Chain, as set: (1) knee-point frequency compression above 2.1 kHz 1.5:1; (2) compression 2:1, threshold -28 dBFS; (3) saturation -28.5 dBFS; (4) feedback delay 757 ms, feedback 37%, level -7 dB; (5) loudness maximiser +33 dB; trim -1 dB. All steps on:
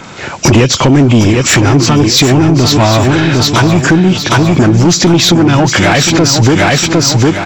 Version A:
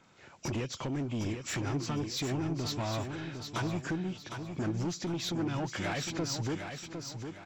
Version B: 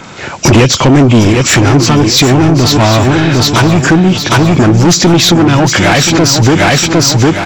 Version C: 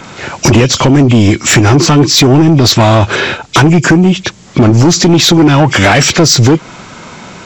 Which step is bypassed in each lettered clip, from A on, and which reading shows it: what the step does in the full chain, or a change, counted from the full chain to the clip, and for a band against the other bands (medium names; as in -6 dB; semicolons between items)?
5, crest factor change +3.5 dB; 2, mean gain reduction 3.0 dB; 4, momentary loudness spread change +4 LU